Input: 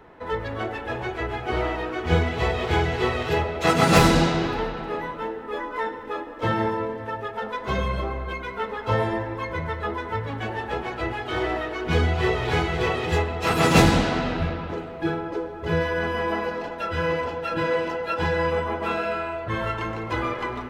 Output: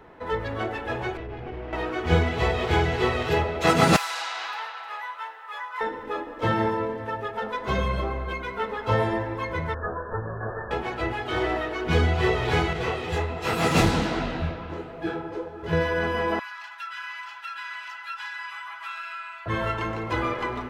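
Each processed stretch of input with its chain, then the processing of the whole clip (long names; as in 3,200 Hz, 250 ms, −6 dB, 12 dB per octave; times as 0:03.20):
0:01.17–0:01.73: lower of the sound and its delayed copy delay 0.37 ms + downward compressor 10 to 1, threshold −29 dBFS + head-to-tape spacing loss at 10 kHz 35 dB
0:03.96–0:05.81: high-pass filter 890 Hz 24 dB per octave + downward compressor 4 to 1, threshold −27 dBFS
0:09.74–0:10.71: lower of the sound and its delayed copy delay 1.8 ms + linear-phase brick-wall low-pass 1,800 Hz
0:12.73–0:15.73: single-tap delay 250 ms −22 dB + micro pitch shift up and down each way 46 cents
0:16.39–0:19.46: inverse Chebyshev high-pass filter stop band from 570 Hz + downward compressor 2 to 1, threshold −35 dBFS
whole clip: no processing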